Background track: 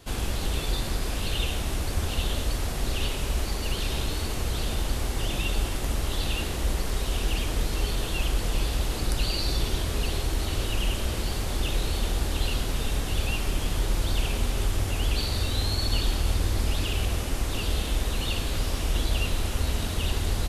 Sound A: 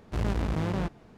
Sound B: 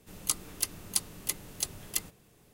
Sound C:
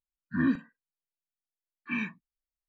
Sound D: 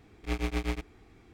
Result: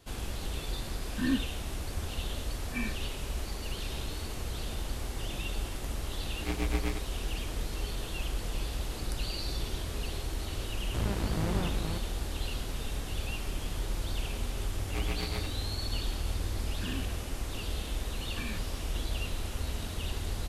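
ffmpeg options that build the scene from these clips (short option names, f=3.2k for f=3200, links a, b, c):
-filter_complex "[3:a]asplit=2[a][b];[4:a]asplit=2[c][d];[0:a]volume=-8dB[e];[a]aecho=1:1:3.9:0.62[f];[c]dynaudnorm=f=120:g=3:m=8dB[g];[1:a]aecho=1:1:473:0.631[h];[d]bandreject=f=50:t=h:w=6,bandreject=f=100:t=h:w=6,bandreject=f=150:t=h:w=6,bandreject=f=200:t=h:w=6,bandreject=f=250:t=h:w=6,bandreject=f=300:t=h:w=6,bandreject=f=350:t=h:w=6[i];[b]acompressor=threshold=-36dB:ratio=6:attack=3.2:release=140:knee=1:detection=peak[j];[f]atrim=end=2.68,asetpts=PTS-STARTPTS,volume=-7dB,afade=t=in:d=0.004:c=hsin,afade=t=out:st=2.676:d=0.004:c=hsin,adelay=840[k];[g]atrim=end=1.33,asetpts=PTS-STARTPTS,volume=-9.5dB,afade=t=in:d=0.004:c=hsin,afade=t=out:st=1.326:d=0.004:c=hsin,adelay=272538S[l];[h]atrim=end=1.17,asetpts=PTS-STARTPTS,volume=-3.5dB,afade=t=in:d=0.004:c=hsin,afade=t=out:st=1.166:d=0.004:c=hsin,adelay=10810[m];[i]atrim=end=1.33,asetpts=PTS-STARTPTS,volume=-3.5dB,afade=t=in:d=0.004:c=hsin,afade=t=out:st=1.326:d=0.004:c=hsin,adelay=14660[n];[j]atrim=end=2.68,asetpts=PTS-STARTPTS,volume=-1dB,afade=t=in:d=0.004:c=hsin,afade=t=out:st=2.676:d=0.004:c=hsin,adelay=16490[o];[e][k][l][m][n][o]amix=inputs=6:normalize=0"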